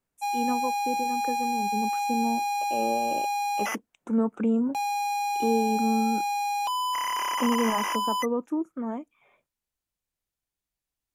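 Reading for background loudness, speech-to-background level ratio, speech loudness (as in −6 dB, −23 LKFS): −28.0 LKFS, −2.0 dB, −30.0 LKFS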